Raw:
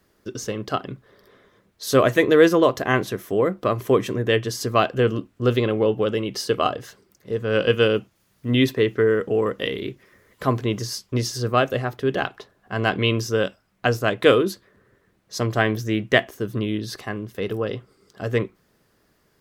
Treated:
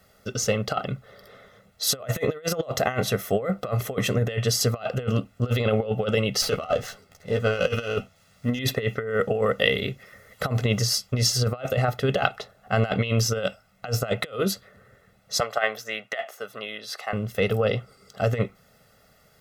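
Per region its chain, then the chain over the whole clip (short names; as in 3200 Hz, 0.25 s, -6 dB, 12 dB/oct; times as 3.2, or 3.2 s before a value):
6.42–8.59 doubler 12 ms -5 dB + running maximum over 3 samples
15.4–17.13 HPF 750 Hz + high shelf 2500 Hz -8.5 dB
whole clip: low shelf 91 Hz -6 dB; comb 1.5 ms, depth 83%; negative-ratio compressor -23 dBFS, ratio -0.5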